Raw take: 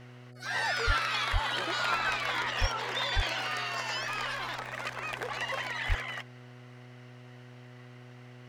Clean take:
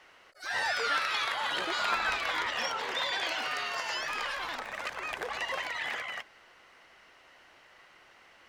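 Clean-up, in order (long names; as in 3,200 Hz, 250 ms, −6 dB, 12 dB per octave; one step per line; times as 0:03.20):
hum removal 123.4 Hz, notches 6
high-pass at the plosives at 0:00.86/0:01.32/0:02.60/0:03.15/0:05.88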